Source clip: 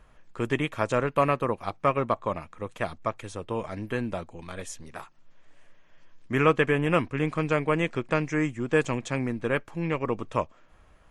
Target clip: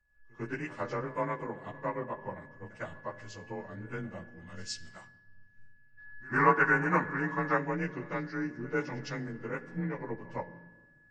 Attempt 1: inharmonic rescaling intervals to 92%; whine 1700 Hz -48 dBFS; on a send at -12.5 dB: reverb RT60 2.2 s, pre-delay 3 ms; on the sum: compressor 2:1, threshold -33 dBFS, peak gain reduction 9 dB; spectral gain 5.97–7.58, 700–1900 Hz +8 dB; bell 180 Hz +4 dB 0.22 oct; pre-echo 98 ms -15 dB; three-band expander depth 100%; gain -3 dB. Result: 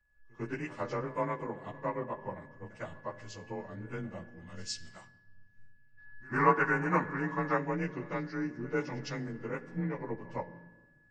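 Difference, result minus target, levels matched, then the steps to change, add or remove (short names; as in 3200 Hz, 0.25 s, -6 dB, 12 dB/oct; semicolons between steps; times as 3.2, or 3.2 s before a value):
2000 Hz band -2.5 dB
add after compressor: dynamic EQ 1600 Hz, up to +4 dB, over -50 dBFS, Q 2.6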